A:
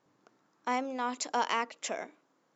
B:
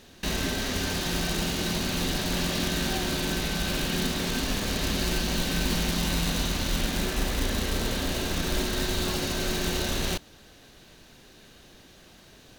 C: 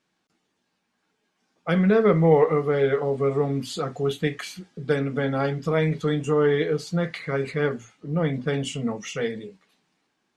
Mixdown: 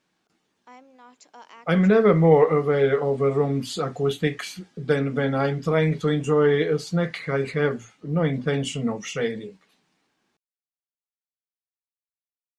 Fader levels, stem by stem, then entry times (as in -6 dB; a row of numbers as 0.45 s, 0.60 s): -16.5 dB, mute, +1.5 dB; 0.00 s, mute, 0.00 s